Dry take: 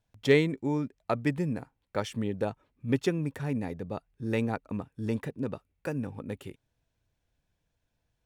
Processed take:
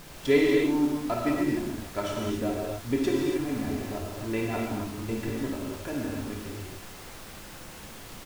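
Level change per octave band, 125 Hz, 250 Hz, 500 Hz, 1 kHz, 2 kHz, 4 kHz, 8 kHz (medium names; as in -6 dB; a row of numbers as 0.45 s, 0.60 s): -2.5 dB, +4.0 dB, +2.5 dB, +3.5 dB, +2.0 dB, +3.5 dB, +9.0 dB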